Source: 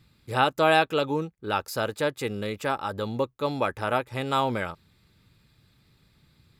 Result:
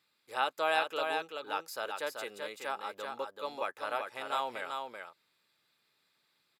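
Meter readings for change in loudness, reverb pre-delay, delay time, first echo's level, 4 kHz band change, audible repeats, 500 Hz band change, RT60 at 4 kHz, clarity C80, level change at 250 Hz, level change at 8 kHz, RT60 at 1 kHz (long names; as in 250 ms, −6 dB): −9.0 dB, no reverb audible, 384 ms, −5.0 dB, −7.0 dB, 1, −10.0 dB, no reverb audible, no reverb audible, −19.5 dB, −7.0 dB, no reverb audible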